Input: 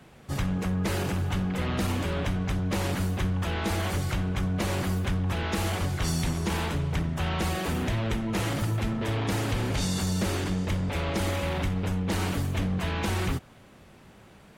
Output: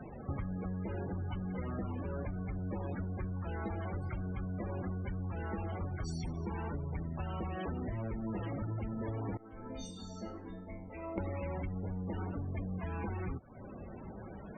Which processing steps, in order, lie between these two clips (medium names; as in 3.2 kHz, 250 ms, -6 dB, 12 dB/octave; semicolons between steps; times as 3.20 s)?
peaking EQ 140 Hz -4.5 dB 0.38 oct; loudest bins only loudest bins 32; 9.37–11.18 s: chord resonator A3 minor, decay 0.39 s; compression 20:1, threshold -42 dBFS, peak gain reduction 19 dB; trim +7.5 dB